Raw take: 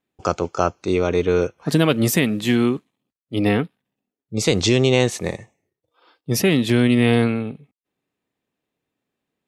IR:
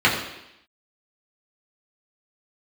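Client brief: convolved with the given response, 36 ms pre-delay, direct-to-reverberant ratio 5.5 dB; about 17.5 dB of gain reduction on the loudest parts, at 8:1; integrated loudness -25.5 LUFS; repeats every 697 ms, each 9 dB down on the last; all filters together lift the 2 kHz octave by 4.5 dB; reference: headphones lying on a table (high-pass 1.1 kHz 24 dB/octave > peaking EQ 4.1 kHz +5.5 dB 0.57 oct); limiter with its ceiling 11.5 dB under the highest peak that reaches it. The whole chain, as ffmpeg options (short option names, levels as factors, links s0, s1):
-filter_complex "[0:a]equalizer=f=2000:t=o:g=5,acompressor=threshold=0.0316:ratio=8,alimiter=level_in=1.19:limit=0.0631:level=0:latency=1,volume=0.841,aecho=1:1:697|1394|2091|2788:0.355|0.124|0.0435|0.0152,asplit=2[s0][s1];[1:a]atrim=start_sample=2205,adelay=36[s2];[s1][s2]afir=irnorm=-1:irlink=0,volume=0.0447[s3];[s0][s3]amix=inputs=2:normalize=0,highpass=f=1100:w=0.5412,highpass=f=1100:w=1.3066,equalizer=f=4100:t=o:w=0.57:g=5.5,volume=5.96"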